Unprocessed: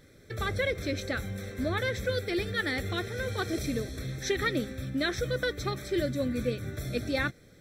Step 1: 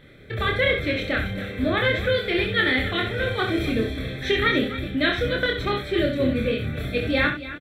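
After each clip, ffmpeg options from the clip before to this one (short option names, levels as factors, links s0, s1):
-filter_complex "[0:a]highshelf=f=4200:t=q:w=3:g=-10.5,asplit=2[s0][s1];[s1]adelay=27,volume=0.708[s2];[s0][s2]amix=inputs=2:normalize=0,asplit=2[s3][s4];[s4]aecho=0:1:66|274|277:0.422|0.106|0.2[s5];[s3][s5]amix=inputs=2:normalize=0,volume=1.78"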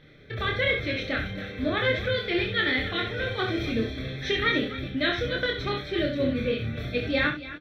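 -af "highshelf=f=6800:t=q:w=3:g=-6.5,flanger=delay=6.4:depth=2.3:regen=66:speed=0.67:shape=sinusoidal"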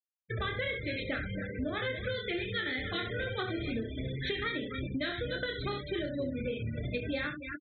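-af "afftfilt=real='re*gte(hypot(re,im),0.0282)':imag='im*gte(hypot(re,im),0.0282)':win_size=1024:overlap=0.75,acompressor=threshold=0.0282:ratio=10"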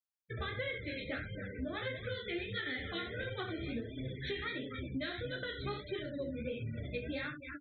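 -af "flanger=delay=7.3:depth=7.6:regen=-5:speed=1.5:shape=sinusoidal,volume=0.794"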